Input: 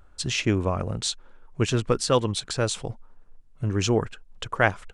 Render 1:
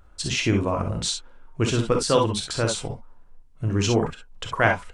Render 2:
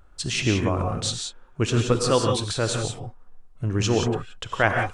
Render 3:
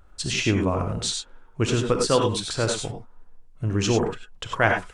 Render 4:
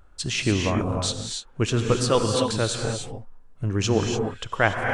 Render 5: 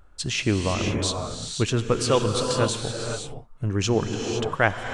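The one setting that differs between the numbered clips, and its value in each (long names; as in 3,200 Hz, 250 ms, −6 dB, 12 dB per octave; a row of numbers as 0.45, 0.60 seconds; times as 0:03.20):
reverb whose tail is shaped and stops, gate: 80, 200, 120, 320, 540 milliseconds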